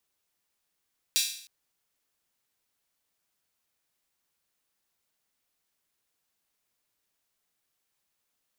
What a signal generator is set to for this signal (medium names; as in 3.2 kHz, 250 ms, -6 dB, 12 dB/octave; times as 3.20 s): open hi-hat length 0.31 s, high-pass 3.5 kHz, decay 0.58 s